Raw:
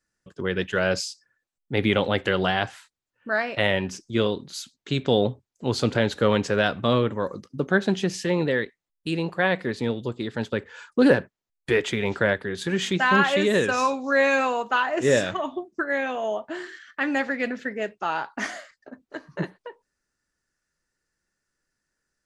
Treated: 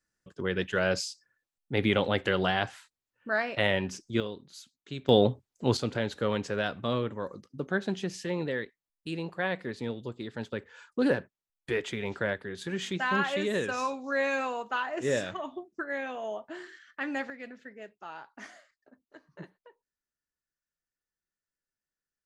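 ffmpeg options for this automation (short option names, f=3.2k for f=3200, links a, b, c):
-af "asetnsamples=n=441:p=0,asendcmd='4.2 volume volume -13dB;5.09 volume volume -0.5dB;5.77 volume volume -8.5dB;17.3 volume volume -16.5dB',volume=-4dB"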